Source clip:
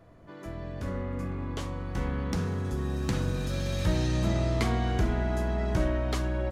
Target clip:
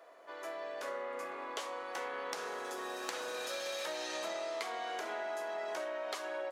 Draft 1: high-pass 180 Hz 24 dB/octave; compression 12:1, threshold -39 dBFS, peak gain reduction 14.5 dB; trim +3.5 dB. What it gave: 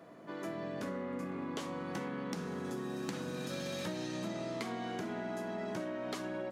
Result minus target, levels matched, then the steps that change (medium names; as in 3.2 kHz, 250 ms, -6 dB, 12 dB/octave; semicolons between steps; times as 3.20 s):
250 Hz band +14.0 dB
change: high-pass 500 Hz 24 dB/octave